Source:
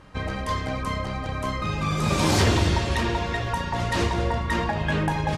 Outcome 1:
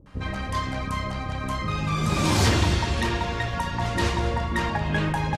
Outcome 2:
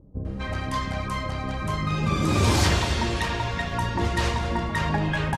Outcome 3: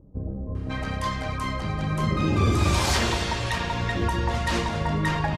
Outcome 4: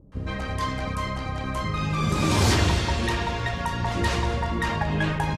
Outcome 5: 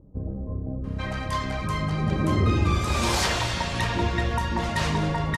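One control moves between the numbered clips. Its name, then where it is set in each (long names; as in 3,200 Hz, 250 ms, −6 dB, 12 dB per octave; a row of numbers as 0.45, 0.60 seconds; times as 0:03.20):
multiband delay without the direct sound, delay time: 60, 250, 550, 120, 840 milliseconds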